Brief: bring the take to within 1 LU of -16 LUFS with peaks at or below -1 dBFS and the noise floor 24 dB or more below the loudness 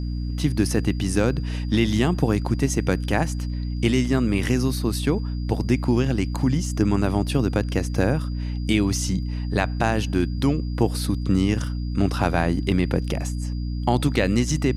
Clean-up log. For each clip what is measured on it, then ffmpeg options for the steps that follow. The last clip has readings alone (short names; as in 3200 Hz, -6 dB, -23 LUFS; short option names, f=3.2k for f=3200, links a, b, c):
hum 60 Hz; harmonics up to 300 Hz; hum level -24 dBFS; steady tone 4800 Hz; tone level -48 dBFS; loudness -23.0 LUFS; peak -5.0 dBFS; loudness target -16.0 LUFS
-> -af "bandreject=f=60:t=h:w=6,bandreject=f=120:t=h:w=6,bandreject=f=180:t=h:w=6,bandreject=f=240:t=h:w=6,bandreject=f=300:t=h:w=6"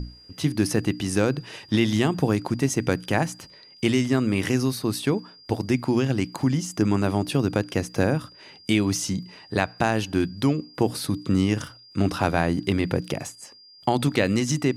hum none; steady tone 4800 Hz; tone level -48 dBFS
-> -af "bandreject=f=4.8k:w=30"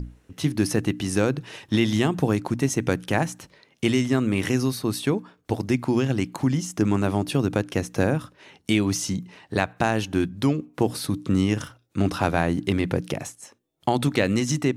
steady tone none; loudness -24.5 LUFS; peak -5.0 dBFS; loudness target -16.0 LUFS
-> -af "volume=8.5dB,alimiter=limit=-1dB:level=0:latency=1"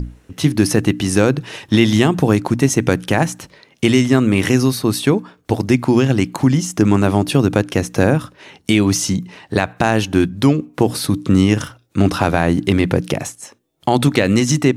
loudness -16.5 LUFS; peak -1.0 dBFS; noise floor -54 dBFS